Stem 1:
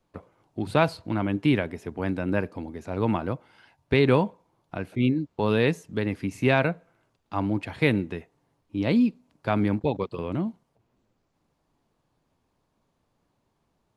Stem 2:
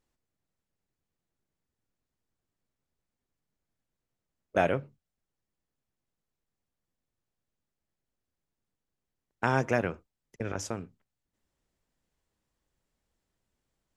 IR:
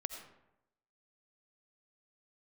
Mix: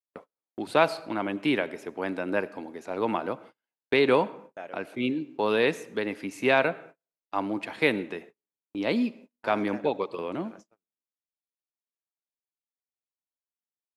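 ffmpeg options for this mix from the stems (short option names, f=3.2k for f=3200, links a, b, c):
-filter_complex "[0:a]volume=-1dB,asplit=2[a][b];[b]volume=-9dB[c];[1:a]highshelf=f=6.6k:g=-9,volume=-15dB,asplit=2[d][e];[e]volume=-19dB[f];[2:a]atrim=start_sample=2205[g];[c][f]amix=inputs=2:normalize=0[h];[h][g]afir=irnorm=-1:irlink=0[i];[a][d][i]amix=inputs=3:normalize=0,highpass=340,agate=range=-37dB:threshold=-46dB:ratio=16:detection=peak"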